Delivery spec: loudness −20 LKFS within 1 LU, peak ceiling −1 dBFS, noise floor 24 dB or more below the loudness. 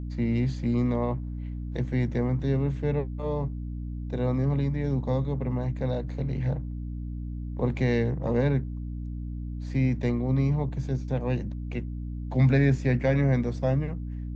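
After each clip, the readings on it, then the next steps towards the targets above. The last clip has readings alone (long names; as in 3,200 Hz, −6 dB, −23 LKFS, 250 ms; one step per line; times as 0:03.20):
mains hum 60 Hz; hum harmonics up to 300 Hz; level of the hum −31 dBFS; integrated loudness −28.0 LKFS; sample peak −11.0 dBFS; target loudness −20.0 LKFS
→ hum removal 60 Hz, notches 5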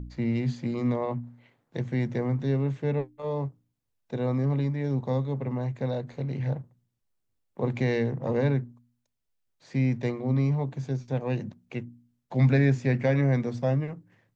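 mains hum none found; integrated loudness −28.5 LKFS; sample peak −12.0 dBFS; target loudness −20.0 LKFS
→ level +8.5 dB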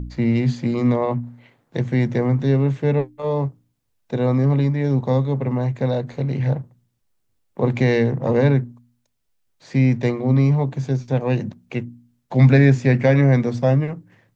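integrated loudness −20.0 LKFS; sample peak −3.5 dBFS; background noise floor −70 dBFS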